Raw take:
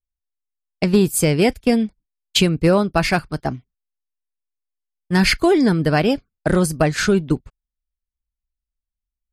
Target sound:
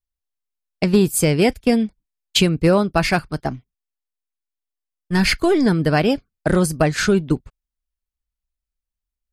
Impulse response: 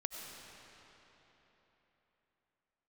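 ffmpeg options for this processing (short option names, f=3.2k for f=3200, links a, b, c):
-filter_complex "[0:a]asettb=1/sr,asplit=3[a][b][c];[a]atrim=end=3.474[d];[b]atrim=start=3.47:end=5.66,asetpts=PTS-STARTPTS,afade=t=in:d=0.004:c=qsin,afade=t=out:st=2.186:d=0.004:c=qsin,aeval=exprs='if(lt(val(0),0),0.708*val(0),val(0))':c=same[e];[c]atrim=start=5.656[f];[d][e]acrossfade=d=0.004:c1=hsin:c2=qsin[g];[g][f]acrossfade=d=0.004:c1=qsin:c2=hsin"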